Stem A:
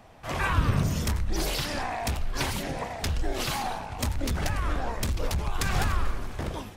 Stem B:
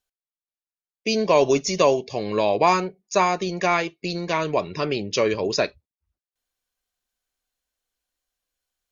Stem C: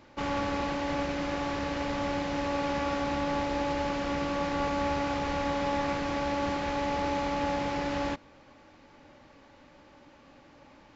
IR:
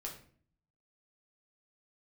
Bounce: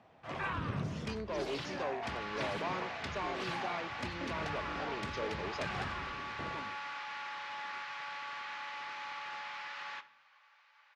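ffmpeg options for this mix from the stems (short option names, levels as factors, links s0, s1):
-filter_complex "[0:a]volume=0.299,asplit=2[s0][s1];[s1]volume=0.376[s2];[1:a]asoftclip=type=tanh:threshold=0.141,volume=0.15[s3];[2:a]highpass=f=1100:w=0.5412,highpass=f=1100:w=1.3066,asoftclip=type=hard:threshold=0.0168,adelay=1850,volume=0.531,asplit=2[s4][s5];[s5]volume=0.668[s6];[3:a]atrim=start_sample=2205[s7];[s2][s6]amix=inputs=2:normalize=0[s8];[s8][s7]afir=irnorm=-1:irlink=0[s9];[s0][s3][s4][s9]amix=inputs=4:normalize=0,highpass=130,lowpass=3700"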